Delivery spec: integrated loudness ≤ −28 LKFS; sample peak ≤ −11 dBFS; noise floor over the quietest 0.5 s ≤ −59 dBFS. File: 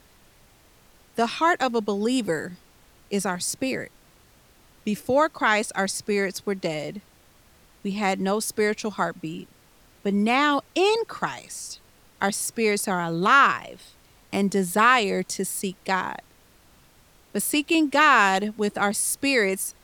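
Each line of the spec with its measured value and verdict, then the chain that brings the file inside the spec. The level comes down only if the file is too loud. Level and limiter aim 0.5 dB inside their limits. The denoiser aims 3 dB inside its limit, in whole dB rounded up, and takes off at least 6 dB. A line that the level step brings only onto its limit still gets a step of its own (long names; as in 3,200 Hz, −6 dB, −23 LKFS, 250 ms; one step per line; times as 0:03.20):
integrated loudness −23.5 LKFS: out of spec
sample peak −5.5 dBFS: out of spec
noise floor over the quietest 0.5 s −56 dBFS: out of spec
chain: level −5 dB
brickwall limiter −11.5 dBFS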